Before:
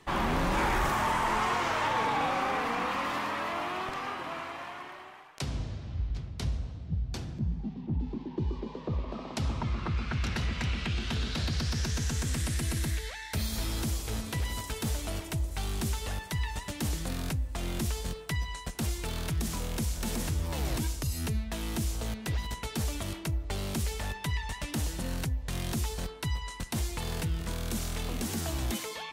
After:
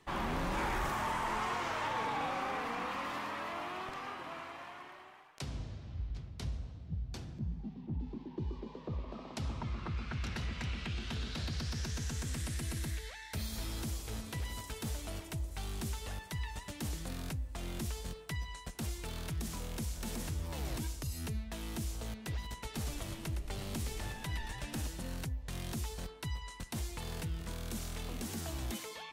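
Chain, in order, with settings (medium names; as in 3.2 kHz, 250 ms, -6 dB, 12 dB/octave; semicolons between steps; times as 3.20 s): 22.51–24.87 s: frequency-shifting echo 113 ms, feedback 60%, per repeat -94 Hz, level -8 dB; trim -7 dB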